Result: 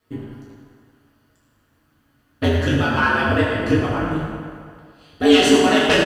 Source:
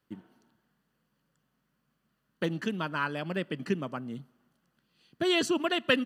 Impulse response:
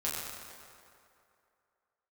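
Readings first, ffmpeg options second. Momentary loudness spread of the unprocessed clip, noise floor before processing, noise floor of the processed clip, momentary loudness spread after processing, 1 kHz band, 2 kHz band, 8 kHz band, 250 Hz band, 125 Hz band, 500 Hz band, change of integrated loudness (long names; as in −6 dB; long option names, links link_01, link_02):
16 LU, −78 dBFS, −63 dBFS, 19 LU, +14.0 dB, +13.0 dB, +14.0 dB, +13.5 dB, +16.0 dB, +13.5 dB, +13.0 dB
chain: -filter_complex "[0:a]aeval=exprs='0.355*sin(PI/2*2.24*val(0)/0.355)':channel_layout=same,asplit=2[link_01][link_02];[link_02]adelay=44,volume=-11.5dB[link_03];[link_01][link_03]amix=inputs=2:normalize=0,aeval=exprs='val(0)*sin(2*PI*79*n/s)':channel_layout=same[link_04];[1:a]atrim=start_sample=2205,asetrate=52920,aresample=44100[link_05];[link_04][link_05]afir=irnorm=-1:irlink=0,volume=2dB"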